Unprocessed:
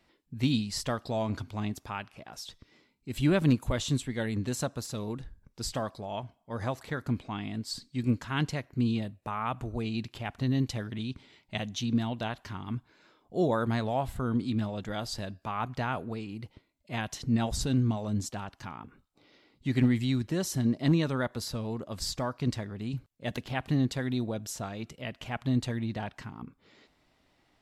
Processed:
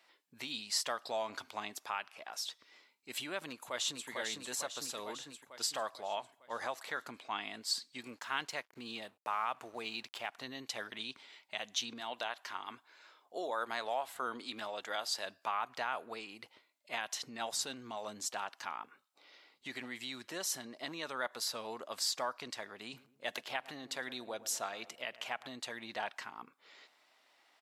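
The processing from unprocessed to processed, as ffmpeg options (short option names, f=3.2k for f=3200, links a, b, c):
-filter_complex "[0:a]asplit=2[a][b];[b]afade=t=in:st=3.46:d=0.01,afade=t=out:st=4.09:d=0.01,aecho=0:1:450|900|1350|1800|2250|2700|3150:0.595662|0.327614|0.180188|0.0991033|0.0545068|0.0299787|0.0164883[c];[a][c]amix=inputs=2:normalize=0,asettb=1/sr,asplit=3[d][e][f];[d]atrim=end=8.014[g];[e]atrim=start=8.01:end=10.32,asetpts=PTS-STARTPTS,afade=t=in:d=0.004:c=qsin,afade=t=out:st=2.306:d=0.004:c=qsin,aeval=exprs='sgn(val(0))*max(abs(val(0))-0.00112,0)':c=same[h];[f]atrim=start=10.316[i];[g][h]acrossfade=d=0.004:c1=hsin:c2=qsin[j];[j][i]acrossfade=d=0.004:c1=qsin:c2=hsin,asettb=1/sr,asplit=3[k][l][m];[k]atrim=end=12.004[n];[l]atrim=start=12:end=15.26,asetpts=PTS-STARTPTS,afade=t=in:d=0.004:c=qsin,afade=t=out:st=3.256:d=0.004:c=qsin,equalizer=f=150:w=1.5:g=-11[o];[m]atrim=start=15.256[p];[n][o]acrossfade=d=0.004:c1=hsin:c2=qsin[q];[q][p]acrossfade=d=0.004:c1=qsin:c2=hsin,asettb=1/sr,asplit=3[r][s][t];[r]atrim=end=22.784[u];[s]atrim=start=22.78:end=25.52,asetpts=PTS-STARTPTS,afade=t=in:d=0.004:c=qsin,afade=t=out:st=2.736:d=0.004:c=qsin,asplit=2[v][w];[w]adelay=112,lowpass=f=1.1k:p=1,volume=-15.5dB,asplit=2[x][y];[y]adelay=112,lowpass=f=1.1k:p=1,volume=0.53,asplit=2[z][aa];[aa]adelay=112,lowpass=f=1.1k:p=1,volume=0.53,asplit=2[ab][ac];[ac]adelay=112,lowpass=f=1.1k:p=1,volume=0.53,asplit=2[ad][ae];[ae]adelay=112,lowpass=f=1.1k:p=1,volume=0.53[af];[v][x][z][ab][ad][af]amix=inputs=6:normalize=0,atrim=end_sample=120834[ag];[t]atrim=start=25.516[ah];[u][ag]acrossfade=d=0.004:c1=hsin:c2=qsin[ai];[ai][ah]acrossfade=d=0.004:c1=qsin:c2=hsin,alimiter=level_in=1dB:limit=-24dB:level=0:latency=1:release=227,volume=-1dB,highpass=730,volume=3dB"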